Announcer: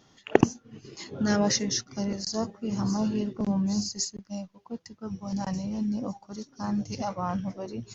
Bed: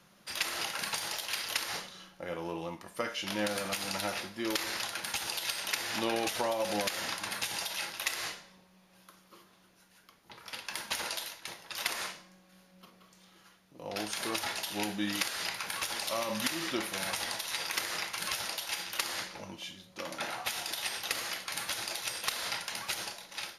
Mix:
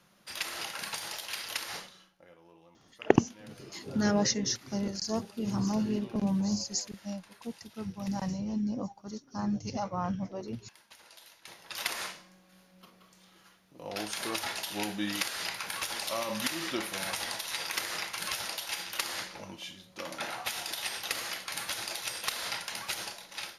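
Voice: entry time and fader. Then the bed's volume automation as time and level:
2.75 s, −2.5 dB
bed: 0:01.84 −2.5 dB
0:02.36 −20.5 dB
0:11.05 −20.5 dB
0:11.69 0 dB

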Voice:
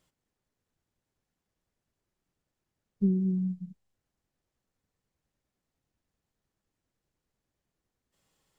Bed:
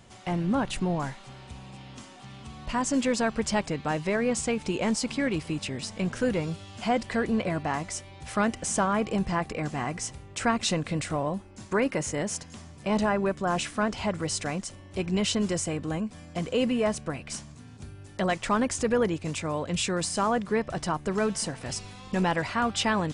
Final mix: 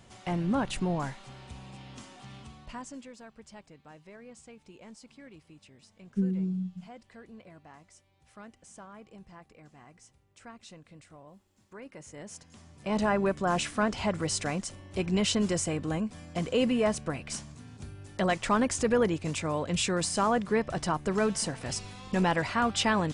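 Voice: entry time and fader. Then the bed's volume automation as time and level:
3.15 s, −2.5 dB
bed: 0:02.37 −2 dB
0:03.13 −23 dB
0:11.66 −23 dB
0:13.13 −0.5 dB

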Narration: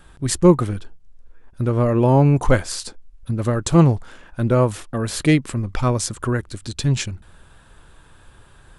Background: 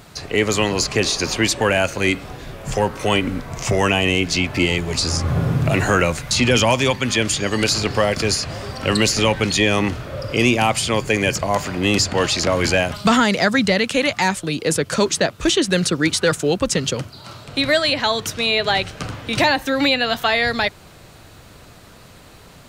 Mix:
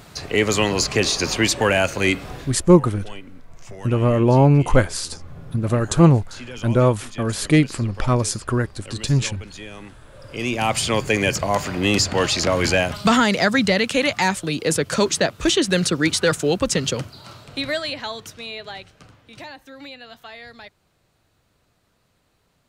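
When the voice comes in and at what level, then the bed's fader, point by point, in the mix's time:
2.25 s, +0.5 dB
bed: 0:02.40 −0.5 dB
0:02.75 −20.5 dB
0:10.03 −20.5 dB
0:10.75 −1 dB
0:16.98 −1 dB
0:19.30 −21.5 dB

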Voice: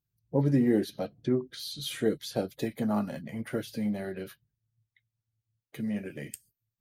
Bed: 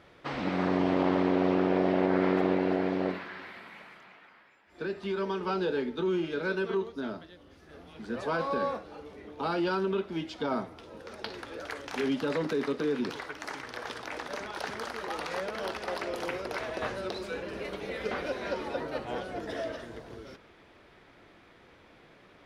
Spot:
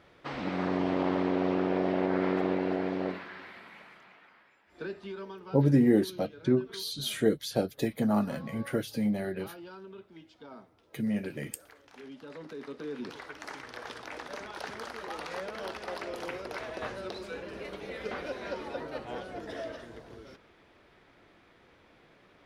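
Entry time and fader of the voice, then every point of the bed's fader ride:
5.20 s, +2.0 dB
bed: 0:04.80 −2.5 dB
0:05.66 −17.5 dB
0:12.11 −17.5 dB
0:13.36 −3.5 dB

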